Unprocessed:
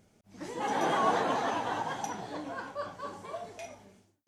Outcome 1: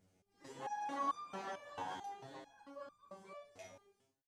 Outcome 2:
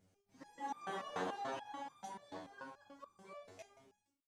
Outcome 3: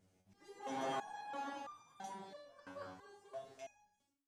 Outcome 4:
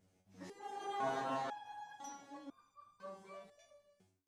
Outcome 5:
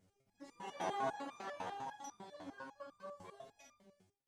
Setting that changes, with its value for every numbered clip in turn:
step-sequenced resonator, speed: 4.5, 6.9, 3, 2, 10 Hertz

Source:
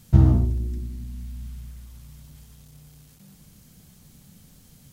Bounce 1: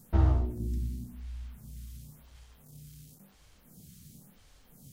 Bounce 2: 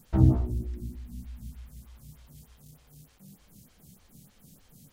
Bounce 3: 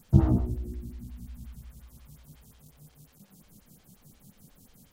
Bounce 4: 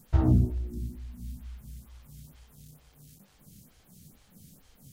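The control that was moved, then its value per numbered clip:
phaser with staggered stages, speed: 0.95, 3.3, 5.6, 2.2 Hertz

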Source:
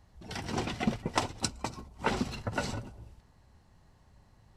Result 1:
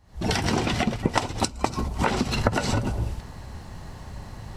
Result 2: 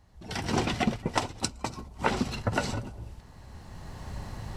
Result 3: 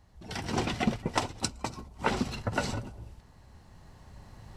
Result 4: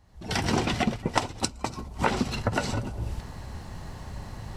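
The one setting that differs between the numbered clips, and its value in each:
camcorder AGC, rising by: 89, 13, 5.3, 34 dB per second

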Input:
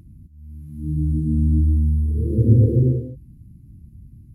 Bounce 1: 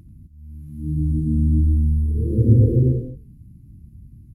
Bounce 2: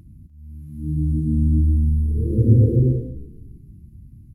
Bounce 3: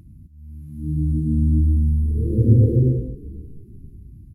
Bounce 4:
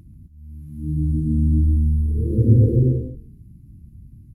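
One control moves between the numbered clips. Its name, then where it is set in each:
echo with shifted repeats, delay time: 88, 297, 487, 139 milliseconds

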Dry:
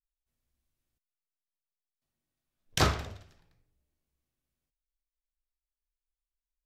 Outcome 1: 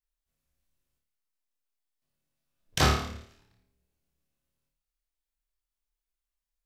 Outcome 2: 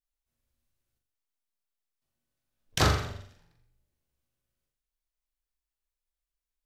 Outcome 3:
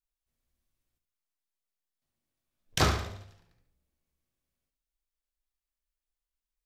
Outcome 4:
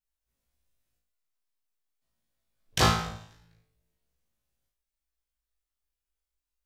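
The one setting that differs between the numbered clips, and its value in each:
flutter between parallel walls, walls apart: 4.7, 7.2, 12.2, 3.1 metres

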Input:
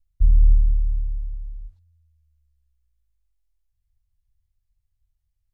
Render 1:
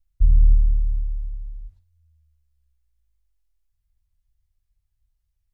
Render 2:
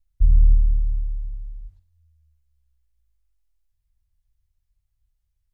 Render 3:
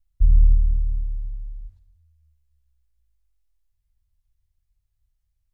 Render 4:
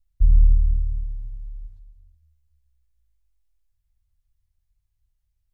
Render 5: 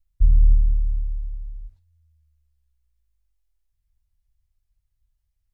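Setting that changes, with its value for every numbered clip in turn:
reverb whose tail is shaped and stops, gate: 130, 210, 340, 520, 80 milliseconds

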